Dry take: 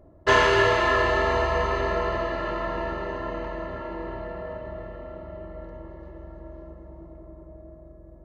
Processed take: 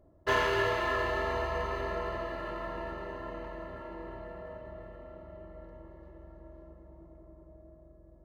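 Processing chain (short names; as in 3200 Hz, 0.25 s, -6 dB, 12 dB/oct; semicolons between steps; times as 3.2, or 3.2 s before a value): median filter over 5 samples; gain -9 dB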